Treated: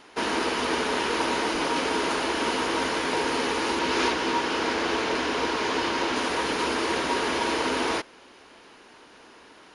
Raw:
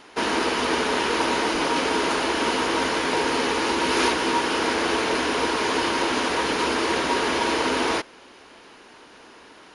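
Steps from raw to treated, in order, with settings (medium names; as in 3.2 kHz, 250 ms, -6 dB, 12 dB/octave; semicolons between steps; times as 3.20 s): 3.79–6.16 s: low-pass 7.5 kHz 12 dB/octave; trim -3 dB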